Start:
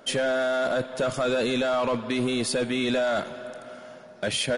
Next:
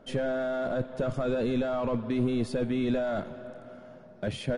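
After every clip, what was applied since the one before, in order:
spectral tilt −3.5 dB per octave
level −7.5 dB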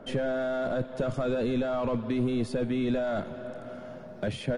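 multiband upward and downward compressor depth 40%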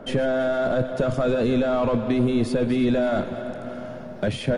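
feedback delay that plays each chunk backwards 163 ms, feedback 61%, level −13 dB
level +6.5 dB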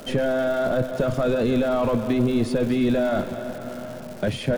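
surface crackle 370 per second −34 dBFS

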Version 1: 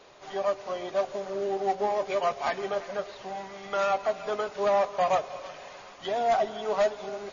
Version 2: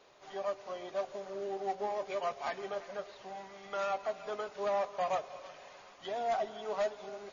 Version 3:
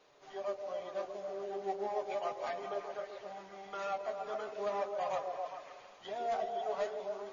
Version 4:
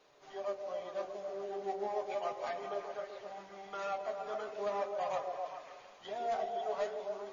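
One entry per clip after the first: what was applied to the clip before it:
low-shelf EQ 180 Hz −3.5 dB; level −8 dB
flanger 0.37 Hz, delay 6.4 ms, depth 5.8 ms, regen −35%; echo through a band-pass that steps 135 ms, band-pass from 360 Hz, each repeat 0.7 octaves, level −0.5 dB
hum removal 95.4 Hz, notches 38

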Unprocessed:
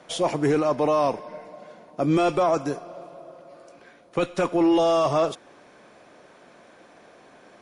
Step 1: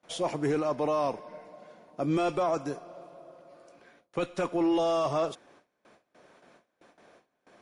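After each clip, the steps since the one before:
noise gate with hold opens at −41 dBFS
level −6.5 dB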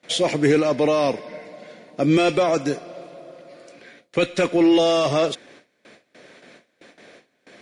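octave-band graphic EQ 125/250/500/1,000/2,000/4,000/8,000 Hz +6/+7/+7/−4/+12/+10/+8 dB
level +2.5 dB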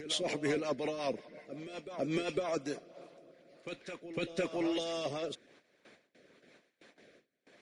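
backwards echo 505 ms −11 dB
rotating-speaker cabinet horn 5.5 Hz, later 1 Hz, at 0:02.38
harmonic and percussive parts rebalanced harmonic −9 dB
level −8.5 dB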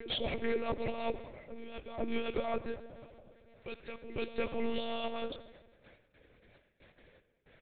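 repeating echo 136 ms, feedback 42%, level −21 dB
on a send at −14 dB: convolution reverb RT60 1.3 s, pre-delay 66 ms
on the sum: one-pitch LPC vocoder at 8 kHz 230 Hz

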